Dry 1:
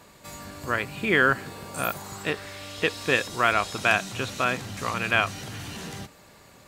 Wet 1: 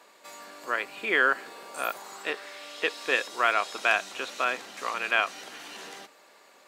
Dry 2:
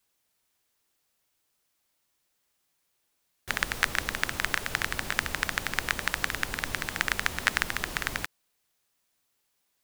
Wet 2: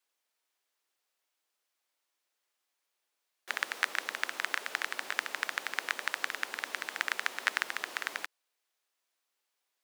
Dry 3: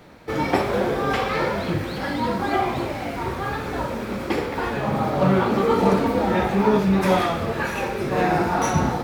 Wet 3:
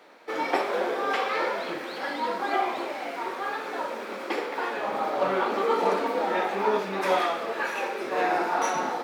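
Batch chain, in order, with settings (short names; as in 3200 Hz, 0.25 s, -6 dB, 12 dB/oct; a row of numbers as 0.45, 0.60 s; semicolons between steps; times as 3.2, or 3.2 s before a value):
Bessel high-pass 460 Hz, order 4; high shelf 6900 Hz -7.5 dB; normalise peaks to -9 dBFS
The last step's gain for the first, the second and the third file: -1.0, -3.5, -2.0 dB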